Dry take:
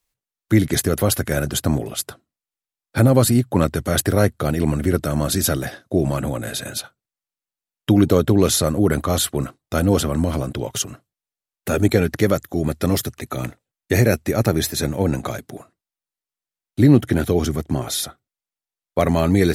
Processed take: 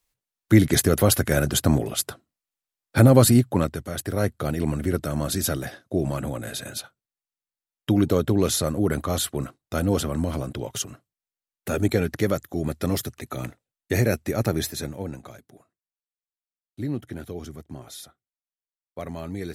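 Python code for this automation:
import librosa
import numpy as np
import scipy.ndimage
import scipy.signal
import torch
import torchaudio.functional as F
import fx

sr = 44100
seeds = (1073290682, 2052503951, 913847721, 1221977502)

y = fx.gain(x, sr, db=fx.line((3.37, 0.0), (3.96, -12.5), (4.3, -5.5), (14.61, -5.5), (15.26, -16.5)))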